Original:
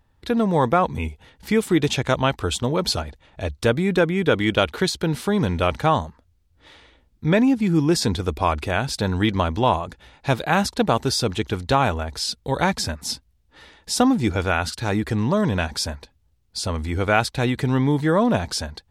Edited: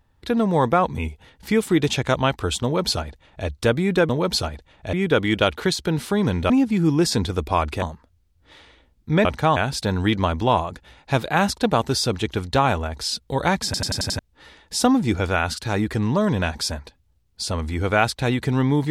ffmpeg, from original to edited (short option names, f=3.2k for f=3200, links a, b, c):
-filter_complex "[0:a]asplit=13[a][b][c][d][e][f][g][h][i][j][k][l][m];[a]atrim=end=4.092[n];[b]atrim=start=2.628:end=3.472[o];[c]atrim=start=4.088:end=5.662[p];[d]atrim=start=7.398:end=8.722[q];[e]atrim=start=5.968:end=7.402[r];[f]atrim=start=5.658:end=5.972[s];[g]atrim=start=8.718:end=12.902[t];[h]atrim=start=12.808:end=12.902[u];[i]atrim=start=12.808:end=12.902[v];[j]atrim=start=12.808:end=12.902[w];[k]atrim=start=12.808:end=12.902[x];[l]atrim=start=12.808:end=12.902[y];[m]atrim=start=13.348[z];[n][o]acrossfade=d=0.004:c1=hsin:c2=hsin[aa];[aa][p]acrossfade=d=0.004:c1=hsin:c2=hsin[ab];[ab][q]acrossfade=d=0.004:c1=hsin:c2=hsin[ac];[ac][r]acrossfade=d=0.004:c1=hsin:c2=hsin[ad];[ad][s]acrossfade=d=0.004:c1=hsin:c2=hsin[ae];[ae][t]acrossfade=d=0.004:c1=hsin:c2=hsin[af];[af][u]acrossfade=d=0.004:c1=hsin:c2=hsin[ag];[ag][v]acrossfade=d=0.004:c1=hsin:c2=hsin[ah];[ah][w]acrossfade=d=0.004:c1=hsin:c2=hsin[ai];[ai][x]acrossfade=d=0.004:c1=hsin:c2=hsin[aj];[aj][y]acrossfade=d=0.004:c1=hsin:c2=hsin[ak];[ak][z]acrossfade=d=0.004:c1=hsin:c2=hsin"